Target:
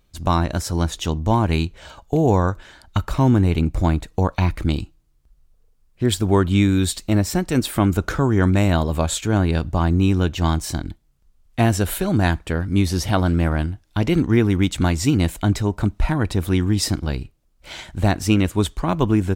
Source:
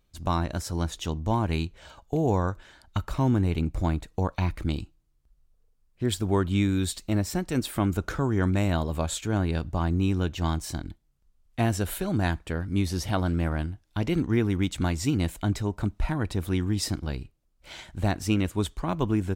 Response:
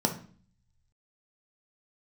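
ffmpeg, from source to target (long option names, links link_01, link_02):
-af "volume=7.5dB"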